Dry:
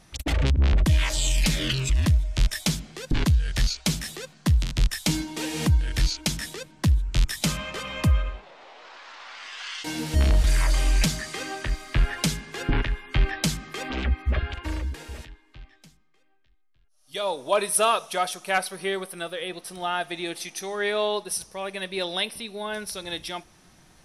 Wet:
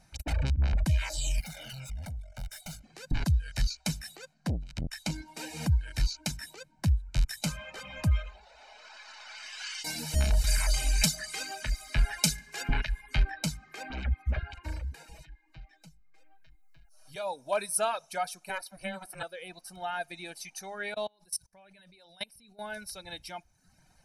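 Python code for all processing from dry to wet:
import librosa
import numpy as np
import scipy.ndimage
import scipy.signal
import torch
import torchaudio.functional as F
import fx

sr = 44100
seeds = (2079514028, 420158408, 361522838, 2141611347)

y = fx.chain(x, sr, fx.low_shelf(hz=180.0, db=-9.0),
    fx.tube_stage(drive_db=33.0, bias=0.75),
    fx.comb(ms=1.4, depth=0.77), at=(1.4, 2.84))
y = fx.chain(y, sr, fx.high_shelf(hz=8700.0, db=-10.0),
    fx.transformer_sat(knee_hz=240.0), at=(4.34, 5.26))
y = fx.chain(y, sr, fx.high_shelf(hz=2700.0, db=11.0),
    fx.comb(ms=4.7, depth=0.32),
    fx.echo_feedback(ms=143, feedback_pct=48, wet_db=-22.5), at=(8.11, 13.23))
y = fx.chain(y, sr, fx.comb(ms=6.1, depth=0.97),
    fx.band_squash(depth_pct=70), at=(15.07, 17.16))
y = fx.chain(y, sr, fx.low_shelf(hz=160.0, db=-11.0),
    fx.ring_mod(carrier_hz=190.0),
    fx.band_squash(depth_pct=100), at=(18.49, 19.23))
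y = fx.chain(y, sr, fx.bass_treble(bass_db=5, treble_db=4),
    fx.level_steps(step_db=24), at=(20.94, 22.59))
y = fx.notch(y, sr, hz=3300.0, q=6.1)
y = fx.dereverb_blind(y, sr, rt60_s=0.75)
y = y + 0.54 * np.pad(y, (int(1.3 * sr / 1000.0), 0))[:len(y)]
y = F.gain(torch.from_numpy(y), -8.0).numpy()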